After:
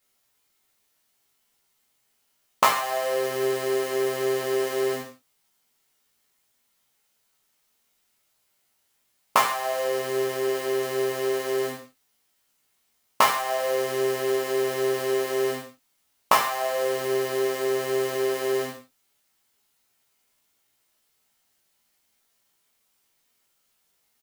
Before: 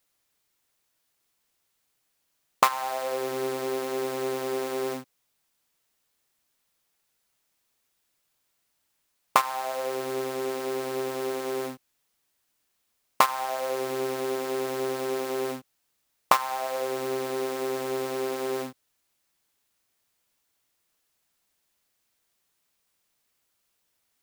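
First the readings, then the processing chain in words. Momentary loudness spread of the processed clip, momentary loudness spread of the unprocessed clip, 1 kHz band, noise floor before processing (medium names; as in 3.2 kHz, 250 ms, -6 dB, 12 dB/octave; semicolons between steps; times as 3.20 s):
5 LU, 7 LU, +1.5 dB, -75 dBFS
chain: doubling 17 ms -3.5 dB; gated-style reverb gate 180 ms falling, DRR -1 dB; trim -1 dB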